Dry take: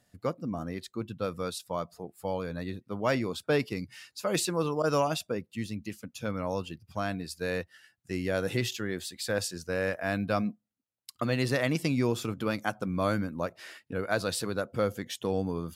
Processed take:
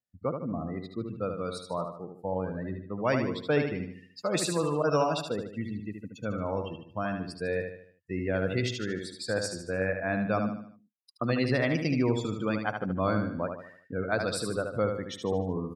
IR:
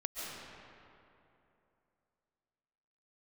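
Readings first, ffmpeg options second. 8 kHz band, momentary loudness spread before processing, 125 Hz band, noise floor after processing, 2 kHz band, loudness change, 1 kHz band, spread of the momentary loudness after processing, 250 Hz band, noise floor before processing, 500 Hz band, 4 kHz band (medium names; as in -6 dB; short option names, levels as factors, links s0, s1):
-2.0 dB, 10 LU, +1.0 dB, -62 dBFS, +0.5 dB, +1.0 dB, +1.0 dB, 10 LU, +1.5 dB, -77 dBFS, +1.0 dB, -1.5 dB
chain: -filter_complex "[0:a]afftdn=nr=29:nf=-38,asplit=2[s0][s1];[s1]aecho=0:1:75|150|225|300|375:0.501|0.216|0.0927|0.0398|0.0171[s2];[s0][s2]amix=inputs=2:normalize=0"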